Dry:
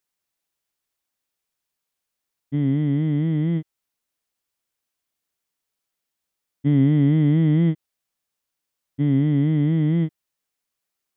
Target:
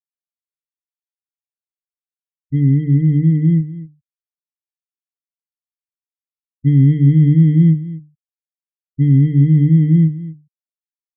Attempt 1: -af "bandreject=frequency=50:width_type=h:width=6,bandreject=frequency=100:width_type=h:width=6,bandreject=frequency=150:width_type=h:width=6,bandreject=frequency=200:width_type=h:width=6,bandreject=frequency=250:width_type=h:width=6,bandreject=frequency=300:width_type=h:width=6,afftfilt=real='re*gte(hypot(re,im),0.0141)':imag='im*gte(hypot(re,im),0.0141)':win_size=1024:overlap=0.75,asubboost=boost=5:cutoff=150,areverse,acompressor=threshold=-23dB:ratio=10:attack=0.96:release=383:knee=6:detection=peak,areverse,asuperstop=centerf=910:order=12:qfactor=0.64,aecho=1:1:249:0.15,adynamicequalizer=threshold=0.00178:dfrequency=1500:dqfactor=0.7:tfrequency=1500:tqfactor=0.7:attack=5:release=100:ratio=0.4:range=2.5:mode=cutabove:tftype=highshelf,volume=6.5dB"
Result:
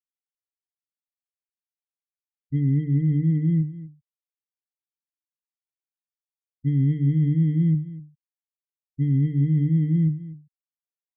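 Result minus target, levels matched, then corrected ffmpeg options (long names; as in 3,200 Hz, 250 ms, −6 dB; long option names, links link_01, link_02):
downward compressor: peak gain reduction +10.5 dB
-af "bandreject=frequency=50:width_type=h:width=6,bandreject=frequency=100:width_type=h:width=6,bandreject=frequency=150:width_type=h:width=6,bandreject=frequency=200:width_type=h:width=6,bandreject=frequency=250:width_type=h:width=6,bandreject=frequency=300:width_type=h:width=6,afftfilt=real='re*gte(hypot(re,im),0.0141)':imag='im*gte(hypot(re,im),0.0141)':win_size=1024:overlap=0.75,asubboost=boost=5:cutoff=150,areverse,acompressor=threshold=-11.5dB:ratio=10:attack=0.96:release=383:knee=6:detection=peak,areverse,asuperstop=centerf=910:order=12:qfactor=0.64,aecho=1:1:249:0.15,adynamicequalizer=threshold=0.00178:dfrequency=1500:dqfactor=0.7:tfrequency=1500:tqfactor=0.7:attack=5:release=100:ratio=0.4:range=2.5:mode=cutabove:tftype=highshelf,volume=6.5dB"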